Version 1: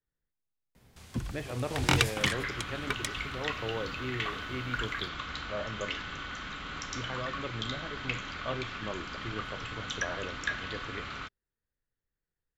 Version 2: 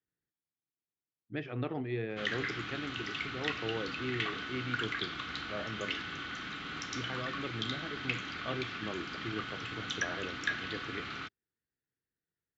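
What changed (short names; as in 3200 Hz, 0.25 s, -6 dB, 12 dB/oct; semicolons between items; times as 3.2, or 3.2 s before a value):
first sound: muted; master: add speaker cabinet 110–6300 Hz, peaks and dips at 320 Hz +4 dB, 570 Hz -7 dB, 1000 Hz -7 dB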